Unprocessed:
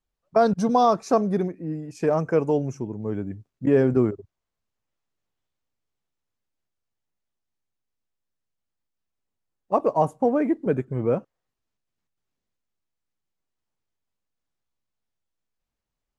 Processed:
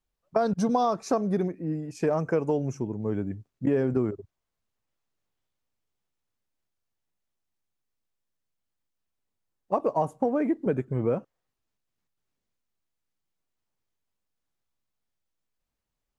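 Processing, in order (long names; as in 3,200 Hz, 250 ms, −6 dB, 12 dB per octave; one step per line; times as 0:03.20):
downward compressor 5 to 1, threshold −21 dBFS, peak gain reduction 7.5 dB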